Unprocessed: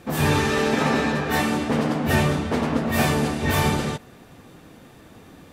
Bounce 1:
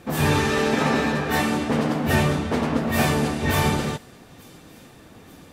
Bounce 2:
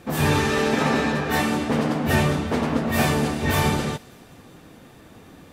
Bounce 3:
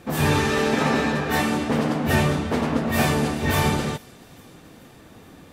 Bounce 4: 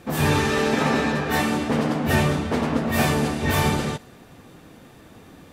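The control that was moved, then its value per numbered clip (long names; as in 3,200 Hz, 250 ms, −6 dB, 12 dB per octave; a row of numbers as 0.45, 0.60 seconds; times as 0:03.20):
delay with a high-pass on its return, delay time: 885, 197, 427, 63 milliseconds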